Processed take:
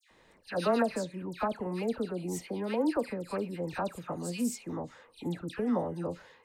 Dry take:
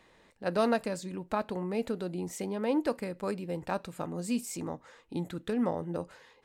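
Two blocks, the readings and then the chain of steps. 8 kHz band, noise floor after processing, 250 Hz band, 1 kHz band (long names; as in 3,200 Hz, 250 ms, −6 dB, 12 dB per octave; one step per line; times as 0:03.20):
0.0 dB, −63 dBFS, 0.0 dB, 0.0 dB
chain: all-pass dispersion lows, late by 107 ms, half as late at 1,900 Hz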